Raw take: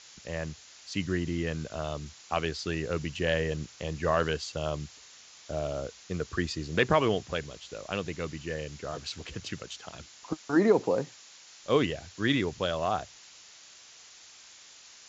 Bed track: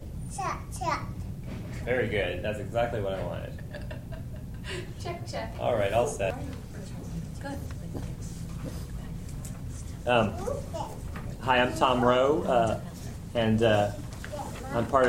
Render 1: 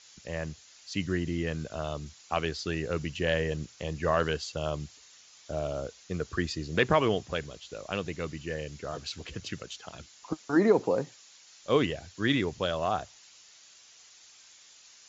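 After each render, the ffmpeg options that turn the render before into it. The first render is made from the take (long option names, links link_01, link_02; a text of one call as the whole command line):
ffmpeg -i in.wav -af "afftdn=noise_reduction=6:noise_floor=-53" out.wav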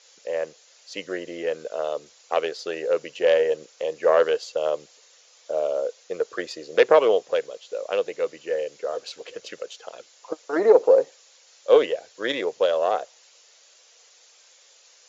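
ffmpeg -i in.wav -af "aeval=exprs='0.335*(cos(1*acos(clip(val(0)/0.335,-1,1)))-cos(1*PI/2))+0.119*(cos(2*acos(clip(val(0)/0.335,-1,1)))-cos(2*PI/2))':channel_layout=same,highpass=frequency=500:width_type=q:width=4.9" out.wav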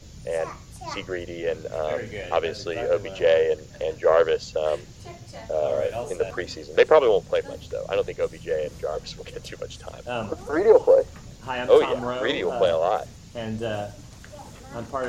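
ffmpeg -i in.wav -i bed.wav -filter_complex "[1:a]volume=-6dB[link_01];[0:a][link_01]amix=inputs=2:normalize=0" out.wav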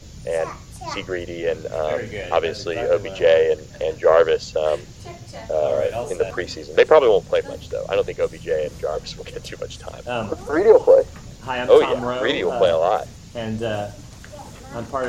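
ffmpeg -i in.wav -af "volume=4dB,alimiter=limit=-2dB:level=0:latency=1" out.wav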